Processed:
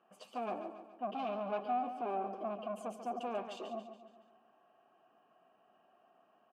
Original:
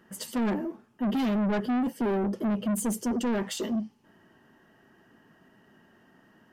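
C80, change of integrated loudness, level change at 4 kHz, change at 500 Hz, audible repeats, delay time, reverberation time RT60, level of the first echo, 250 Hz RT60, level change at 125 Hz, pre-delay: none, -11.0 dB, -13.5 dB, -7.0 dB, 5, 0.141 s, none, -10.0 dB, none, under -20 dB, none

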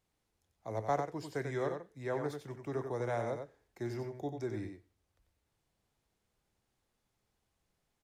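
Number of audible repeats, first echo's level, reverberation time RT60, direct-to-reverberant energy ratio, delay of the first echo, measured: 1, -6.5 dB, none, none, 92 ms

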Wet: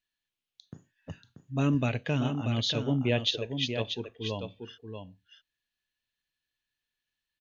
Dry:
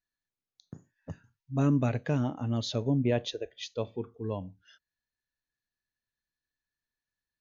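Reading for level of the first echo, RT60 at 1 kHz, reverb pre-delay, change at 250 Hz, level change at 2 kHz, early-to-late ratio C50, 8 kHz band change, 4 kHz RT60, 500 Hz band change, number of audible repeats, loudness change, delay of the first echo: -7.0 dB, none, none, -0.5 dB, +6.5 dB, none, n/a, none, 0.0 dB, 1, +1.0 dB, 0.635 s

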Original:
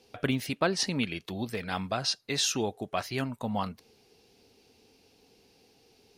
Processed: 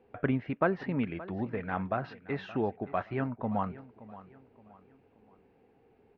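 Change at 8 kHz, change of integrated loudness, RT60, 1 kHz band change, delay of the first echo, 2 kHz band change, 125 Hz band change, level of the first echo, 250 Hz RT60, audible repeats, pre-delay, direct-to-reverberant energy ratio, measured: under -40 dB, -2.5 dB, none, 0.0 dB, 0.573 s, -3.5 dB, 0.0 dB, -17.5 dB, none, 3, none, none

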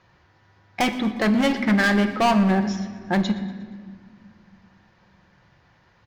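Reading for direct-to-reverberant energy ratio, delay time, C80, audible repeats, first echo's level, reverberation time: 7.0 dB, 0.119 s, 11.5 dB, 2, -19.5 dB, 1.7 s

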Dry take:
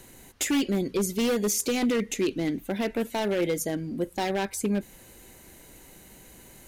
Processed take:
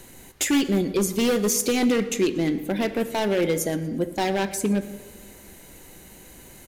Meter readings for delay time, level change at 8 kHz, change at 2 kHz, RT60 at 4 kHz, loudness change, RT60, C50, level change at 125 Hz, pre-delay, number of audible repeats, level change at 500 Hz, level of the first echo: 0.118 s, +3.5 dB, +4.0 dB, 0.90 s, +4.0 dB, 1.5 s, 13.0 dB, +4.5 dB, 3 ms, 2, +4.0 dB, -20.0 dB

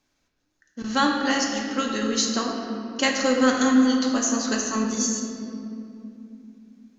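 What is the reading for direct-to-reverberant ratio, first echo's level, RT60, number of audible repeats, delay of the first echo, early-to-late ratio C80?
-0.5 dB, none, 2.8 s, none, none, 3.5 dB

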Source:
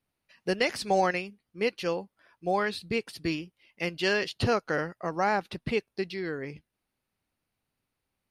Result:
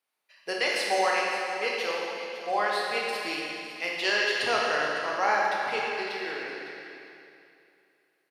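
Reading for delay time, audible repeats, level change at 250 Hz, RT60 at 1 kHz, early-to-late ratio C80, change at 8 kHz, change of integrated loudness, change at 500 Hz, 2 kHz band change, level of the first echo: 0.554 s, 1, -7.5 dB, 2.7 s, 0.0 dB, +5.0 dB, +2.5 dB, -0.5 dB, +5.5 dB, -13.0 dB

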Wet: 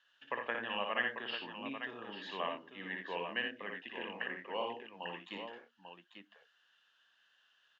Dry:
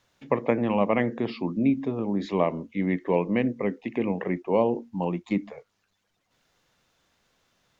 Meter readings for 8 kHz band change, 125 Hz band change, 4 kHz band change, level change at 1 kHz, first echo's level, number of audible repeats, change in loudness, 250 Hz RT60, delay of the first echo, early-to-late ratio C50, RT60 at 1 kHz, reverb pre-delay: n/a, -26.5 dB, +4.5 dB, -9.5 dB, -4.5 dB, 2, -13.0 dB, none, 58 ms, none, none, none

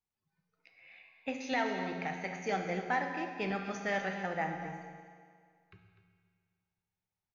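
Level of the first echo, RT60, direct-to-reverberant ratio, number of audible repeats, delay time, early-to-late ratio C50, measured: -13.0 dB, 2.0 s, 3.0 dB, 1, 0.249 s, 4.0 dB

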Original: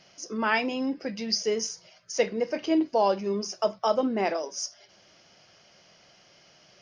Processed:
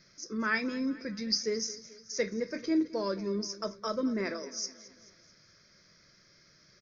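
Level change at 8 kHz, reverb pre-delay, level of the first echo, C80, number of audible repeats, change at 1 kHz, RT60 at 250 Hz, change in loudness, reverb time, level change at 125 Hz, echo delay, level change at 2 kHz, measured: -3.5 dB, none, -18.0 dB, none, 4, -11.5 dB, none, -5.0 dB, none, n/a, 0.218 s, -3.0 dB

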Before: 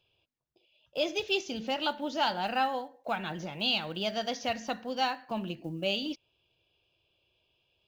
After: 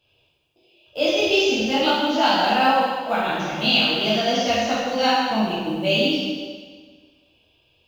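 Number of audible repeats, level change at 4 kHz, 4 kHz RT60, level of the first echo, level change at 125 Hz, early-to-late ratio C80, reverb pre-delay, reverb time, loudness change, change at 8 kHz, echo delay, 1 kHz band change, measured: none, +11.5 dB, 1.5 s, none, +10.5 dB, 0.5 dB, 5 ms, 1.6 s, +12.0 dB, n/a, none, +11.5 dB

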